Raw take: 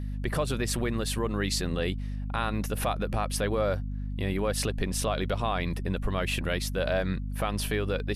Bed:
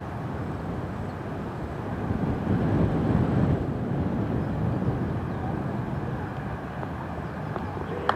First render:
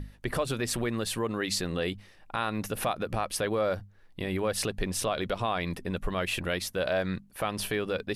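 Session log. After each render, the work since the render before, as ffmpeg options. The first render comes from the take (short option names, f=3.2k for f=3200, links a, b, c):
-af "bandreject=f=50:t=h:w=6,bandreject=f=100:t=h:w=6,bandreject=f=150:t=h:w=6,bandreject=f=200:t=h:w=6,bandreject=f=250:t=h:w=6"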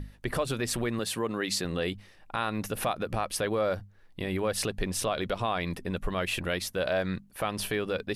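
-filter_complex "[0:a]asettb=1/sr,asplit=3[a][b][c];[a]atrim=end=0.994[d];[b]atrim=start=0.99:end=1.65,asetpts=PTS-STARTPTS,afade=t=in:d=0.004:c=qsin,afade=t=out:st=0.656:d=0.004:c=qsin,highpass=120[e];[c]atrim=start=1.646[f];[d][e]acrossfade=d=0.004:c1=hsin:c2=qsin[g];[g][f]acrossfade=d=0.004:c1=qsin:c2=hsin"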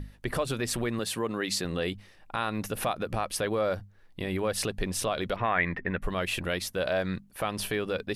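-filter_complex "[0:a]asettb=1/sr,asplit=3[a][b][c];[a]atrim=end=5.364[d];[b]atrim=start=5.36:end=6.02,asetpts=PTS-STARTPTS,afade=t=in:d=0.004:c=qsin,afade=t=out:st=0.656:d=0.004:c=qsin,lowpass=f=1.9k:t=q:w=5.1[e];[c]atrim=start=6.016[f];[d][e]acrossfade=d=0.004:c1=hsin:c2=qsin[g];[g][f]acrossfade=d=0.004:c1=qsin:c2=hsin"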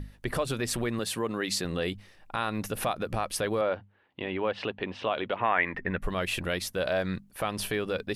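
-filter_complex "[0:a]asettb=1/sr,asplit=3[a][b][c];[a]atrim=end=3.614[d];[b]atrim=start=3.61:end=5.74,asetpts=PTS-STARTPTS,afade=t=in:d=0.004:c=qsin,afade=t=out:st=2.126:d=0.004:c=qsin,highpass=150,equalizer=f=170:t=q:w=4:g=-8,equalizer=f=900:t=q:w=4:g=5,equalizer=f=2.9k:t=q:w=4:g=5,lowpass=f=3.3k:w=0.5412,lowpass=f=3.3k:w=1.3066[e];[c]atrim=start=5.736[f];[d][e]acrossfade=d=0.004:c1=hsin:c2=qsin[g];[g][f]acrossfade=d=0.004:c1=qsin:c2=hsin"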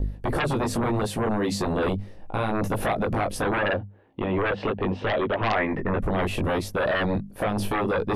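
-filter_complex "[0:a]flanger=delay=18.5:depth=2.2:speed=0.75,acrossover=split=740|900[a][b][c];[a]aeval=exprs='0.0891*sin(PI/2*5.01*val(0)/0.0891)':c=same[d];[d][b][c]amix=inputs=3:normalize=0"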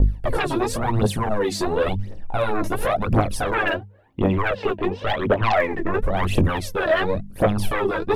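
-af "aphaser=in_gain=1:out_gain=1:delay=3.2:decay=0.72:speed=0.94:type=triangular"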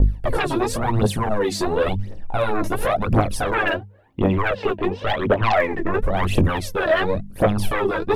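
-af "volume=1dB"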